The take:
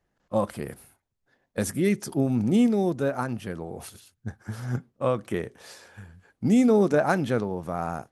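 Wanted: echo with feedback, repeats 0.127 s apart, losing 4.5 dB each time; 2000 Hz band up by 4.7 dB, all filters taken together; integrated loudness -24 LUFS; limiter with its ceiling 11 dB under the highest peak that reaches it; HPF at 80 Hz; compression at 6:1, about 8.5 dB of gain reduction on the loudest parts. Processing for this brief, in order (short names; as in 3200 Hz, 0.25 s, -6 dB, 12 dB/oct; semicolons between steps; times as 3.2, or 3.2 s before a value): HPF 80 Hz; bell 2000 Hz +6.5 dB; compressor 6:1, threshold -25 dBFS; limiter -25 dBFS; feedback echo 0.127 s, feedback 60%, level -4.5 dB; gain +10 dB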